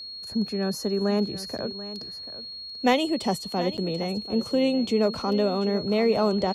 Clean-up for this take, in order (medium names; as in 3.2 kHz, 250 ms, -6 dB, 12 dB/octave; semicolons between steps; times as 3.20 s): band-stop 4.3 kHz, Q 30; interpolate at 1.58/3.77 s, 8.5 ms; inverse comb 737 ms -14.5 dB